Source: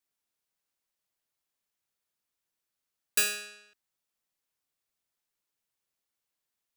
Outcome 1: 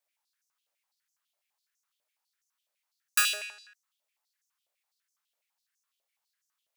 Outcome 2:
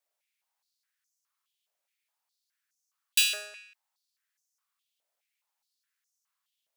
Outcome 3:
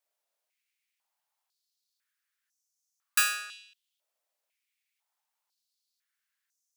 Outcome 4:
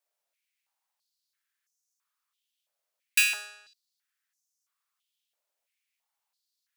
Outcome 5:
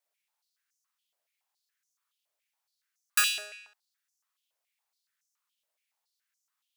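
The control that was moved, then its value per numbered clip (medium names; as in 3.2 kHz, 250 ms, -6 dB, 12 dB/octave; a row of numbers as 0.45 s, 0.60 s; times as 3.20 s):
step-sequenced high-pass, rate: 12 Hz, 4.8 Hz, 2 Hz, 3 Hz, 7.1 Hz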